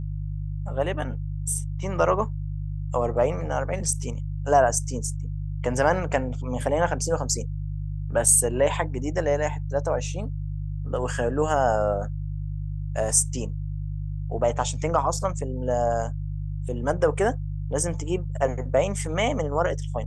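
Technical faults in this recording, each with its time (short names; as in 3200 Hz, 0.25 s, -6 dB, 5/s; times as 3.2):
hum 50 Hz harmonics 3 -30 dBFS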